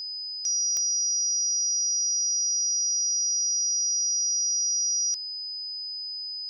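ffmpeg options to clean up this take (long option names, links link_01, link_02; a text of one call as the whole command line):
ffmpeg -i in.wav -af "adeclick=threshold=4,bandreject=frequency=5000:width=30" out.wav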